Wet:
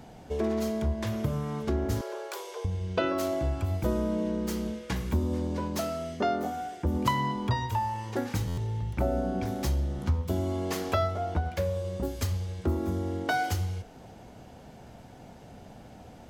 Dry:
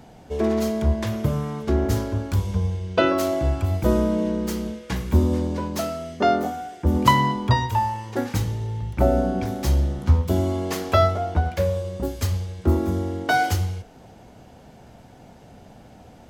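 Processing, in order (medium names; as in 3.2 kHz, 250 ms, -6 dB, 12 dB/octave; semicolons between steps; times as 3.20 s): 2.01–2.65 s: steep high-pass 360 Hz 96 dB/octave; compression 2:1, threshold -28 dBFS, peak gain reduction 10 dB; buffer glitch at 8.47 s, samples 512, times 8; trim -1.5 dB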